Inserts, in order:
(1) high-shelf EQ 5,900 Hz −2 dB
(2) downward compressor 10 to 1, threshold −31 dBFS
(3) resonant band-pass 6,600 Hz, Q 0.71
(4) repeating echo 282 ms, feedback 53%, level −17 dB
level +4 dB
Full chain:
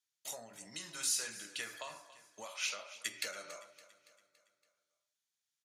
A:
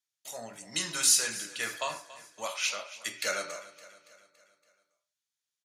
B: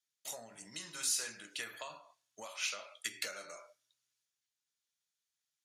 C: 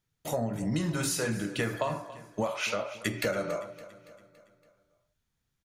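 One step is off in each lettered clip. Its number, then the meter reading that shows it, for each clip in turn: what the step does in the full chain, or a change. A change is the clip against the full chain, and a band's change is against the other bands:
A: 2, average gain reduction 8.0 dB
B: 4, echo-to-direct ratio −15.5 dB to none audible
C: 3, 125 Hz band +20.0 dB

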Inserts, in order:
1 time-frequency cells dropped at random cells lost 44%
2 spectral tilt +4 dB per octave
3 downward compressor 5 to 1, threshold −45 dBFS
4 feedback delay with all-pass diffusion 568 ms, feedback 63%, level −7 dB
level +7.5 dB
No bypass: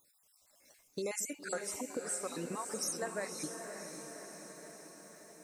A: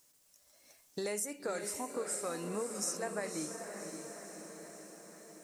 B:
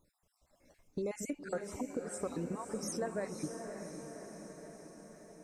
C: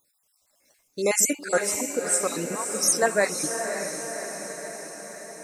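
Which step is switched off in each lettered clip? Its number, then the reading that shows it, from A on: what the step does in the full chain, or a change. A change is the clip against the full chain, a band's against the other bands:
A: 1, 2 kHz band −2.0 dB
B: 2, 125 Hz band +9.0 dB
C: 3, average gain reduction 12.0 dB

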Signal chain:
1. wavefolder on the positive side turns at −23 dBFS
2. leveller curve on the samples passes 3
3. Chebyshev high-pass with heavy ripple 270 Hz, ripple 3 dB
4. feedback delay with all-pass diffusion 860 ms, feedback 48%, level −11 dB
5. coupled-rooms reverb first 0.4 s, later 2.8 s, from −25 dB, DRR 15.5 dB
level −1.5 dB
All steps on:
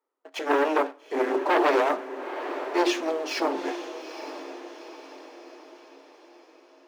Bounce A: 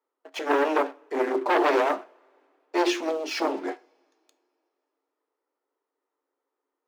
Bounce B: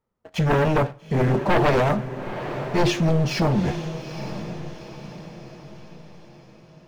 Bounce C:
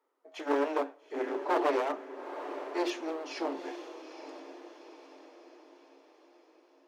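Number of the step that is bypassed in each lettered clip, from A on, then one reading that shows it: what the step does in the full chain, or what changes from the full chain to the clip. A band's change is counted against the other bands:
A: 4, echo-to-direct ratio −8.5 dB to −15.5 dB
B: 3, 250 Hz band +4.0 dB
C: 2, change in integrated loudness −7.0 LU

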